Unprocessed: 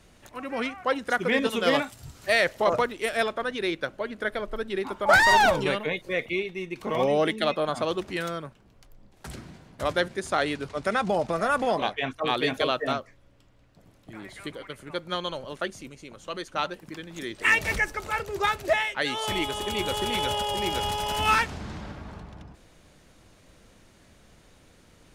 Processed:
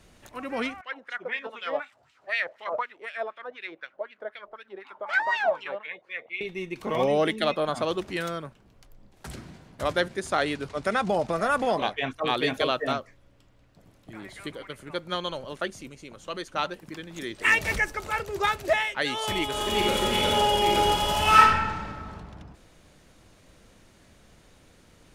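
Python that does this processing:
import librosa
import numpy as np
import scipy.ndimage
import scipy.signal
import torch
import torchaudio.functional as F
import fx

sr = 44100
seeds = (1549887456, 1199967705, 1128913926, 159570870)

y = fx.wah_lfo(x, sr, hz=4.0, low_hz=600.0, high_hz=2700.0, q=3.0, at=(0.81, 6.41))
y = fx.reverb_throw(y, sr, start_s=19.49, length_s=1.92, rt60_s=1.3, drr_db=-2.5)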